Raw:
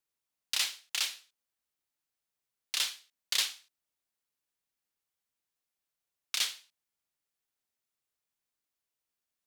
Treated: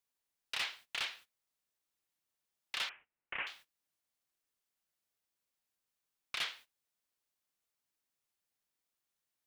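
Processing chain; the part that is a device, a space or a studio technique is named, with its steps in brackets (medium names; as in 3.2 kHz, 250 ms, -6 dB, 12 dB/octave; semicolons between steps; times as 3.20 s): aircraft radio (band-pass 370–2300 Hz; hard clipper -33 dBFS, distortion -12 dB; white noise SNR 22 dB; gate -58 dBFS, range -19 dB); 2.89–3.47 s: steep low-pass 2.8 kHz 72 dB/octave; trim +3 dB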